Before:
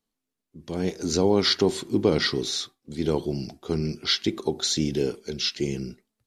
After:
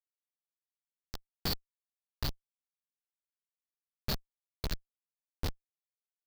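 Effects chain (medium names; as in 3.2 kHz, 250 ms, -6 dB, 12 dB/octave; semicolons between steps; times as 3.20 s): two resonant band-passes 2.1 kHz, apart 2.2 oct; treble shelf 2 kHz +4 dB; Schmitt trigger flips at -21 dBFS; trim +4.5 dB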